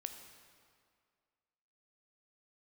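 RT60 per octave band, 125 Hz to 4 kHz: 1.9 s, 2.0 s, 2.1 s, 2.1 s, 1.9 s, 1.6 s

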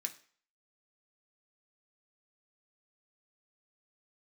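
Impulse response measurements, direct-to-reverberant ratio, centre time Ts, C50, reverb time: 2.5 dB, 8 ms, 15.0 dB, 0.45 s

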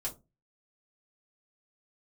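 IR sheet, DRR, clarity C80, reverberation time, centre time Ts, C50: -5.0 dB, 23.0 dB, 0.25 s, 12 ms, 15.5 dB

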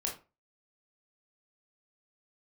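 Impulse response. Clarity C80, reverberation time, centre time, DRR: 15.5 dB, 0.30 s, 24 ms, -1.0 dB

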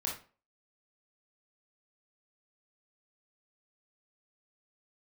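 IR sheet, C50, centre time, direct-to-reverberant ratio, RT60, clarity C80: 5.0 dB, 30 ms, -2.5 dB, 0.40 s, 12.5 dB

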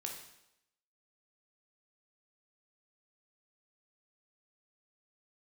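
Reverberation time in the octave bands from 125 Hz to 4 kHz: 0.75 s, 0.80 s, 0.85 s, 0.85 s, 0.80 s, 0.80 s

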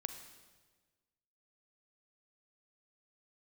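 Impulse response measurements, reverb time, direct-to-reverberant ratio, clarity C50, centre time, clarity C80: 1.4 s, 7.5 dB, 8.5 dB, 20 ms, 10.0 dB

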